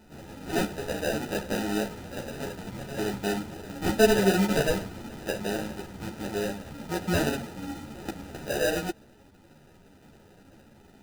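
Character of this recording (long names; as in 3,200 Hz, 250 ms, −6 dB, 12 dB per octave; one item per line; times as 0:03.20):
aliases and images of a low sample rate 1,100 Hz, jitter 0%
a shimmering, thickened sound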